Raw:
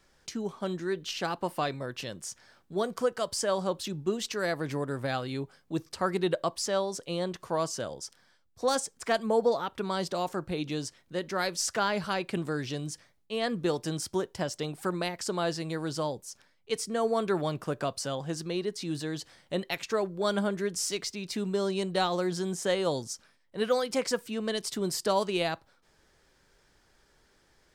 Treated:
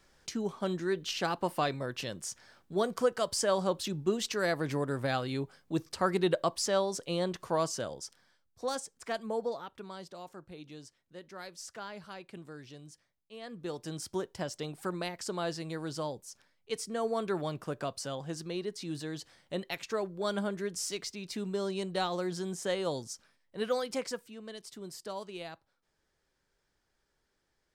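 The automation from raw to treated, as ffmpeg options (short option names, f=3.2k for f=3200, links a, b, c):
-af "volume=10.5dB,afade=t=out:st=7.5:d=1.28:silence=0.398107,afade=t=out:st=9.3:d=0.76:silence=0.446684,afade=t=in:st=13.45:d=0.7:silence=0.298538,afade=t=out:st=23.9:d=0.43:silence=0.354813"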